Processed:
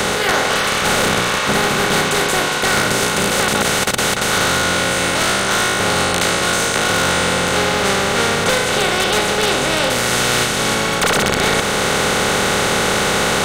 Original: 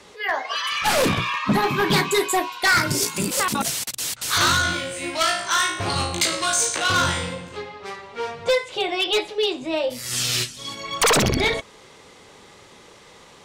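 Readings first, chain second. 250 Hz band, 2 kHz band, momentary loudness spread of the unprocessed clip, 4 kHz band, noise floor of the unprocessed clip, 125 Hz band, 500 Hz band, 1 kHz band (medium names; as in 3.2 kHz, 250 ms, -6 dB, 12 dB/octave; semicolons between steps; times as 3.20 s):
+6.5 dB, +8.0 dB, 11 LU, +6.5 dB, -48 dBFS, +6.0 dB, +7.0 dB, +7.0 dB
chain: spectral levelling over time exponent 0.2; gain riding 0.5 s; trim -5.5 dB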